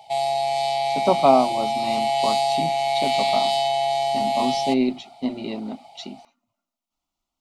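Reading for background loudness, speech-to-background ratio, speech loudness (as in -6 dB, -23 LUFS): -22.5 LUFS, -3.0 dB, -25.5 LUFS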